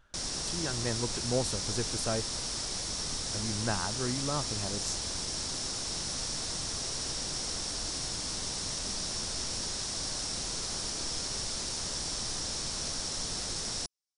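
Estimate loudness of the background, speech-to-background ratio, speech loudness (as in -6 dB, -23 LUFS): -33.0 LUFS, -3.0 dB, -36.0 LUFS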